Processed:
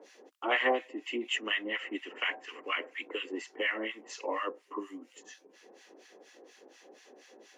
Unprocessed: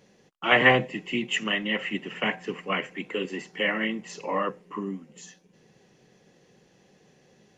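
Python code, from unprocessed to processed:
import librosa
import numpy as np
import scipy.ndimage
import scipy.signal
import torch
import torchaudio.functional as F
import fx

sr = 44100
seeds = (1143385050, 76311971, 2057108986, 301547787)

y = fx.harmonic_tremolo(x, sr, hz=4.2, depth_pct=100, crossover_hz=1100.0)
y = scipy.signal.sosfilt(scipy.signal.ellip(4, 1.0, 50, 280.0, 'highpass', fs=sr, output='sos'), y)
y = fx.band_squash(y, sr, depth_pct=40)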